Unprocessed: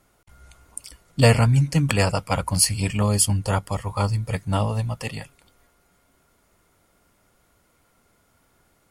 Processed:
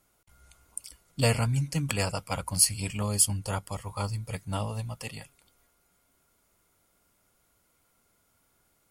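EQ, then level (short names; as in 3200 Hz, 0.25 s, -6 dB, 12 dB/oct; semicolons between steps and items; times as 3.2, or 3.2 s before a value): pre-emphasis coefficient 0.8; high shelf 3800 Hz -9 dB; notch 1800 Hz, Q 16; +4.5 dB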